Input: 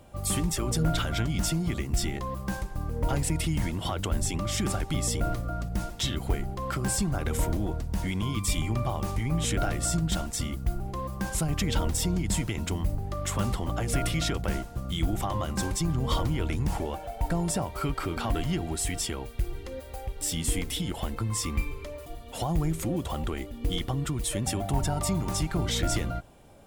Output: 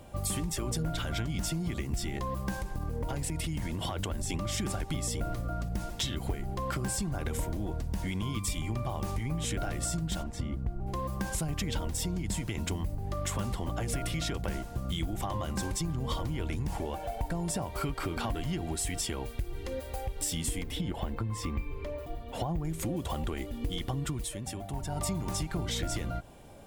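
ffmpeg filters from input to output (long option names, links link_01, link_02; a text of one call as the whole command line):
ffmpeg -i in.wav -filter_complex "[0:a]asettb=1/sr,asplit=3[link_01][link_02][link_03];[link_01]atrim=end=2.564[link_04];[link_02]atrim=start=2.56:end=4.3,asetpts=PTS-STARTPTS,afade=type=in:duration=0.004:curve=qsin,afade=type=out:start_time=1.736:duration=0.004:curve=qsin,acompressor=threshold=-29dB:ratio=6:attack=3.2:release=140:knee=1:detection=peak[link_05];[link_03]atrim=start=4.296[link_06];[link_04][link_05]acrossfade=duration=0.004:curve1=hsin:curve2=qsin[link_07];[link_07][link_06]acrossfade=duration=0.004:curve1=qsin:curve2=hsin,asplit=3[link_08][link_09][link_10];[link_08]afade=type=out:start_time=10.22:duration=0.02[link_11];[link_09]lowpass=frequency=1000:poles=1,afade=type=in:start_time=10.22:duration=0.02,afade=type=out:start_time=10.86:duration=0.02[link_12];[link_10]afade=type=in:start_time=10.86:duration=0.02[link_13];[link_11][link_12][link_13]amix=inputs=3:normalize=0,asettb=1/sr,asplit=3[link_14][link_15][link_16];[link_14]atrim=end=20.634[link_17];[link_15]atrim=start=20.63:end=22.65,asetpts=PTS-STARTPTS,afade=type=in:duration=0.004:curve=qsin,afade=type=out:start_time=2.016:duration=0.004:curve=qsin,equalizer=frequency=9700:width=0.34:gain=-13[link_18];[link_16]atrim=start=22.646[link_19];[link_17][link_18]acrossfade=duration=0.004:curve1=hsin:curve2=qsin[link_20];[link_20][link_19]acrossfade=duration=0.004:curve1=qsin:curve2=hsin,asplit=3[link_21][link_22][link_23];[link_21]atrim=end=24.32,asetpts=PTS-STARTPTS,afade=type=out:start_time=24.08:duration=0.24:silence=0.266073[link_24];[link_22]atrim=start=24.32:end=24.87,asetpts=PTS-STARTPTS,volume=-11.5dB[link_25];[link_23]atrim=start=24.87,asetpts=PTS-STARTPTS,afade=type=in:duration=0.24:silence=0.266073[link_26];[link_24][link_25][link_26]concat=n=3:v=0:a=1,bandreject=frequency=1300:width=14,acompressor=threshold=-32dB:ratio=6,volume=2.5dB" out.wav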